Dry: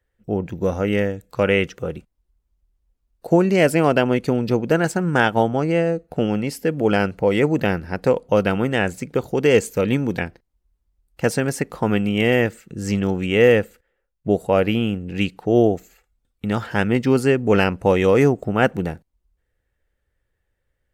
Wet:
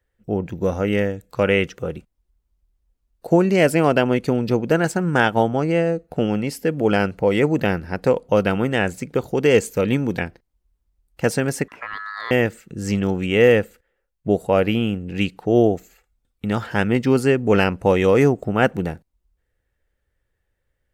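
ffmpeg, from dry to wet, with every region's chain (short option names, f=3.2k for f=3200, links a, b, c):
-filter_complex "[0:a]asettb=1/sr,asplit=3[a][b][c];[a]atrim=end=11.684[d];[b]atrim=start=11.68:end=12.31,asetpts=PTS-STARTPTS,afade=t=in:d=0.004:c=qsin,afade=t=out:st=0.626:d=0.004:c=qsin,aemphasis=mode=reproduction:type=cd,acompressor=threshold=-42dB:ratio=1.5:attack=3.2:release=140:knee=1:detection=peak,aeval=exprs='val(0)*sin(2*PI*1500*n/s)':c=same[e];[c]atrim=start=12.306[f];[d][e]acrossfade=d=0.004:c1=hsin:c2=qsin[g];[g][f]acrossfade=d=0.004:c1=qsin:c2=hsin"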